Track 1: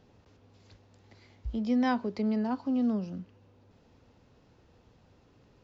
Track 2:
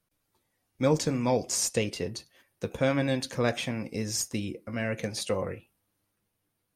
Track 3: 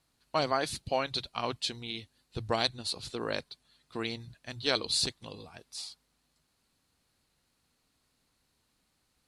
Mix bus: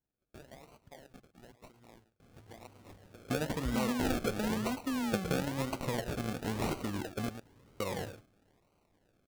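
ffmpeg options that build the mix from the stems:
-filter_complex "[0:a]acompressor=threshold=-32dB:ratio=6,adelay=2200,volume=0dB[a];[1:a]highshelf=f=4k:g=9,acompressor=threshold=-34dB:ratio=8,adelay=2500,volume=2.5dB,asplit=3[b][c][d];[b]atrim=end=7.29,asetpts=PTS-STARTPTS,afade=t=out:st=7.286:d=0.004:c=hsin[e];[c]atrim=start=7.29:end=7.8,asetpts=PTS-STARTPTS,volume=0[f];[d]atrim=start=7.8,asetpts=PTS-STARTPTS,afade=t=in:d=0.004:c=hsin[g];[e][f][g]concat=n=3:v=0:a=1,asplit=2[h][i];[i]volume=-12dB[j];[2:a]acompressor=threshold=-38dB:ratio=2,volume=-16.5dB,asplit=2[k][l];[l]volume=-13.5dB[m];[j][m]amix=inputs=2:normalize=0,aecho=0:1:111:1[n];[a][h][k][n]amix=inputs=4:normalize=0,acrusher=samples=36:mix=1:aa=0.000001:lfo=1:lforange=21.6:lforate=1"

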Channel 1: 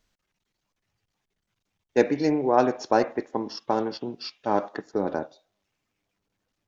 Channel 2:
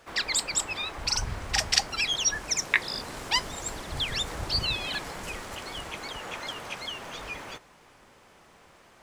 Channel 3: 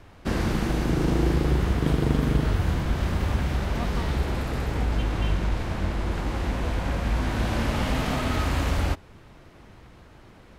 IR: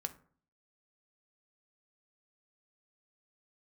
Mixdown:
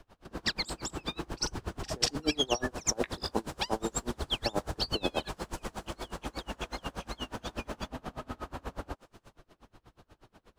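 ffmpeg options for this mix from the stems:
-filter_complex "[0:a]lowpass=1.3k,acompressor=threshold=-23dB:ratio=6,volume=1.5dB[a];[1:a]adelay=300,volume=1.5dB[b];[2:a]acrossover=split=160|1700[c][d][e];[c]acompressor=threshold=-35dB:ratio=4[f];[d]acompressor=threshold=-31dB:ratio=4[g];[e]acompressor=threshold=-50dB:ratio=4[h];[f][g][h]amix=inputs=3:normalize=0,equalizer=f=110:w=0.48:g=-5,volume=-1dB[i];[a][b][i]amix=inputs=3:normalize=0,equalizer=f=2.1k:w=2.9:g=-7,aeval=exprs='val(0)*pow(10,-30*(0.5-0.5*cos(2*PI*8.3*n/s))/20)':c=same"

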